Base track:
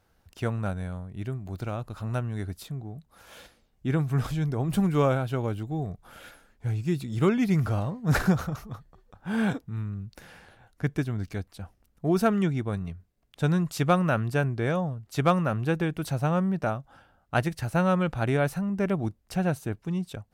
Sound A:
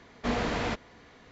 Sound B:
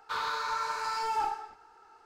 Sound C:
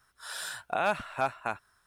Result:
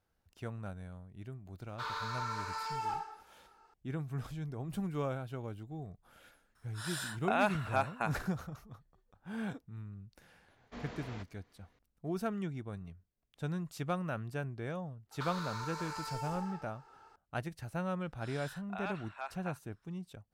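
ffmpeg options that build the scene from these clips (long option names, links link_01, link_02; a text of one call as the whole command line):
ffmpeg -i bed.wav -i cue0.wav -i cue1.wav -i cue2.wav -filter_complex "[2:a]asplit=2[link_01][link_02];[3:a]asplit=2[link_03][link_04];[0:a]volume=-13dB[link_05];[link_02]acrossover=split=380|5700[link_06][link_07][link_08];[link_07]acompressor=threshold=-47dB:ratio=4:attack=88:release=48:knee=2.83:detection=peak[link_09];[link_06][link_09][link_08]amix=inputs=3:normalize=0[link_10];[link_04]highpass=750,lowpass=5900[link_11];[link_01]atrim=end=2.05,asetpts=PTS-STARTPTS,volume=-6.5dB,afade=type=in:duration=0.004:curve=hsin,afade=type=out:start_time=2.046:duration=0.004:curve=hsin,adelay=1690[link_12];[link_03]atrim=end=1.86,asetpts=PTS-STARTPTS,volume=-2.5dB,afade=type=in:duration=0.004:curve=hsin,afade=type=out:start_time=1.856:duration=0.004:curve=hsin,adelay=6550[link_13];[1:a]atrim=end=1.31,asetpts=PTS-STARTPTS,volume=-17.5dB,afade=type=in:duration=0.004:curve=hsin,afade=type=out:start_time=1.306:duration=0.004:curve=hsin,adelay=10480[link_14];[link_10]atrim=end=2.05,asetpts=PTS-STARTPTS,volume=-2.5dB,afade=type=in:duration=0.004:curve=hsin,afade=type=out:start_time=2.046:duration=0.004:curve=hsin,adelay=15110[link_15];[link_11]atrim=end=1.86,asetpts=PTS-STARTPTS,volume=-11dB,afade=type=in:duration=0.004:curve=hsin,afade=type=out:start_time=1.856:duration=0.004:curve=hsin,adelay=18000[link_16];[link_05][link_12][link_13][link_14][link_15][link_16]amix=inputs=6:normalize=0" out.wav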